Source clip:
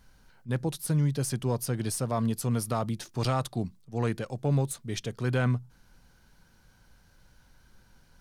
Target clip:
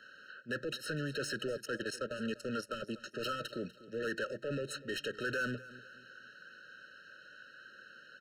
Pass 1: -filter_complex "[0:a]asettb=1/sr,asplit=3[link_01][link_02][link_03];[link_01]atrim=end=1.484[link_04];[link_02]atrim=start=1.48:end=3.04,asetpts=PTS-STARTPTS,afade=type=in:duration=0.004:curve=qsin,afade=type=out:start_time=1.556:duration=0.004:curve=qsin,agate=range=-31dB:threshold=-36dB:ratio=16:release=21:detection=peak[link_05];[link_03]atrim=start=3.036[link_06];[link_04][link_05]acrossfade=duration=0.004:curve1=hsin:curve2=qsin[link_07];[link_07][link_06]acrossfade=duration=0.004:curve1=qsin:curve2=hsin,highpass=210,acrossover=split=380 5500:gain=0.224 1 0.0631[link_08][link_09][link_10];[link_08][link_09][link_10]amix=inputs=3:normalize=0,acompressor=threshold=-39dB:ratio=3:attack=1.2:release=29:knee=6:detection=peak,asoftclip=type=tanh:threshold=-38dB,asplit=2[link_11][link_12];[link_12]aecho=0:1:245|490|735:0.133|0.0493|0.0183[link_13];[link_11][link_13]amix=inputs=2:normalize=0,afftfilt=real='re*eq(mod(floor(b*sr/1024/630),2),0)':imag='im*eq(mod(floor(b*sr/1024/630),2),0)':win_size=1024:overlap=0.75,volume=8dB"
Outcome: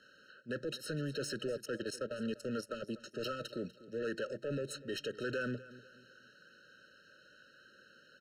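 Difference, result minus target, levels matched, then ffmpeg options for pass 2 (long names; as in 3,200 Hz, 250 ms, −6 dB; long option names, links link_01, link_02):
2,000 Hz band −4.5 dB
-filter_complex "[0:a]asettb=1/sr,asplit=3[link_01][link_02][link_03];[link_01]atrim=end=1.484[link_04];[link_02]atrim=start=1.48:end=3.04,asetpts=PTS-STARTPTS,afade=type=in:duration=0.004:curve=qsin,afade=type=out:start_time=1.556:duration=0.004:curve=qsin,agate=range=-31dB:threshold=-36dB:ratio=16:release=21:detection=peak[link_05];[link_03]atrim=start=3.036[link_06];[link_04][link_05]acrossfade=duration=0.004:curve1=hsin:curve2=qsin[link_07];[link_07][link_06]acrossfade=duration=0.004:curve1=qsin:curve2=hsin,highpass=210,acrossover=split=380 5500:gain=0.224 1 0.0631[link_08][link_09][link_10];[link_08][link_09][link_10]amix=inputs=3:normalize=0,acompressor=threshold=-39dB:ratio=3:attack=1.2:release=29:knee=6:detection=peak,equalizer=frequency=1800:width_type=o:width=1.7:gain=8.5,asoftclip=type=tanh:threshold=-38dB,asplit=2[link_11][link_12];[link_12]aecho=0:1:245|490|735:0.133|0.0493|0.0183[link_13];[link_11][link_13]amix=inputs=2:normalize=0,afftfilt=real='re*eq(mod(floor(b*sr/1024/630),2),0)':imag='im*eq(mod(floor(b*sr/1024/630),2),0)':win_size=1024:overlap=0.75,volume=8dB"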